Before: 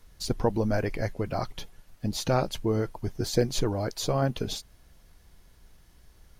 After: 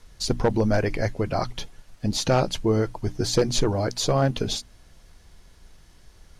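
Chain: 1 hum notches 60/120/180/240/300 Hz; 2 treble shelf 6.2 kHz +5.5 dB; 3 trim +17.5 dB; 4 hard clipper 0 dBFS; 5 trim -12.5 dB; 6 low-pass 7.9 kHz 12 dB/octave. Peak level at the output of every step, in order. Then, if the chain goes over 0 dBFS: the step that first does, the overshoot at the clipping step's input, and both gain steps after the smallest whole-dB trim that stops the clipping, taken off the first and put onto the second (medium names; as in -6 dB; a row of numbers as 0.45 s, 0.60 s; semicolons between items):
-11.0 dBFS, -11.0 dBFS, +6.5 dBFS, 0.0 dBFS, -12.5 dBFS, -12.0 dBFS; step 3, 6.5 dB; step 3 +10.5 dB, step 5 -5.5 dB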